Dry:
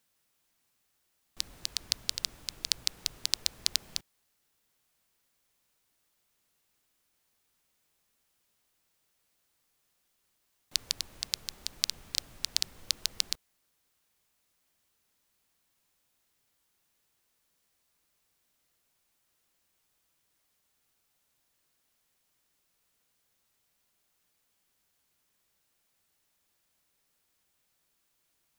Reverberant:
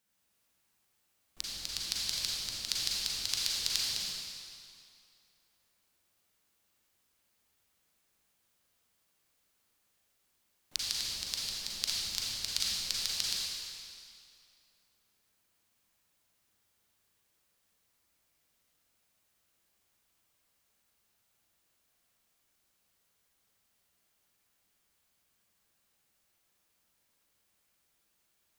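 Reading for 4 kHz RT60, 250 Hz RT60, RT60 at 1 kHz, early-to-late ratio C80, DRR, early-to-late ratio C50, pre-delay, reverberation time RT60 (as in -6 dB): 2.1 s, 2.3 s, 2.5 s, -2.0 dB, -5.5 dB, -4.5 dB, 35 ms, 2.5 s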